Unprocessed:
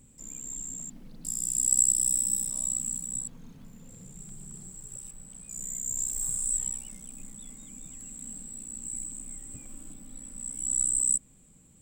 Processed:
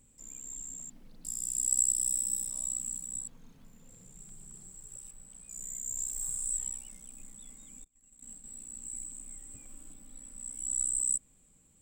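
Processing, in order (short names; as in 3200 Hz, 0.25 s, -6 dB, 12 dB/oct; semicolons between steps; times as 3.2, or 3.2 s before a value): 7.84–8.44 gate -40 dBFS, range -29 dB; bell 160 Hz -6 dB 2.1 oct; gain -4.5 dB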